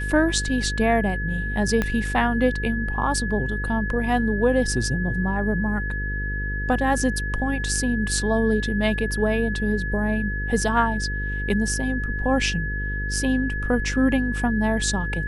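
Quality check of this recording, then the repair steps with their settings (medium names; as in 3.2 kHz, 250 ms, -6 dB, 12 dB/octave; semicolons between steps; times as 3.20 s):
buzz 50 Hz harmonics 10 -28 dBFS
whine 1.7 kHz -29 dBFS
1.82 s: pop -10 dBFS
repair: de-click; band-stop 1.7 kHz, Q 30; de-hum 50 Hz, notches 10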